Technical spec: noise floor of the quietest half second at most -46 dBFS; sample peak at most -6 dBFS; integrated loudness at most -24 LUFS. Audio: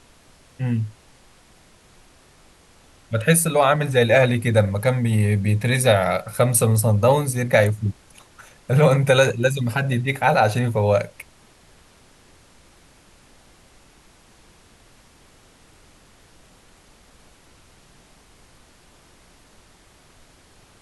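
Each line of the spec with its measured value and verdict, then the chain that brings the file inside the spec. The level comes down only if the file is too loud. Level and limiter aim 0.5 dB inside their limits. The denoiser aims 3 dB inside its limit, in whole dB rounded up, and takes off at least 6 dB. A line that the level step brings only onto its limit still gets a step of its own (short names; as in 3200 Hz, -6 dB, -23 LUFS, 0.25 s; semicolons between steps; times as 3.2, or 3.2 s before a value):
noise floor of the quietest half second -53 dBFS: OK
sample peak -4.5 dBFS: fail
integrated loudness -19.0 LUFS: fail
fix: gain -5.5 dB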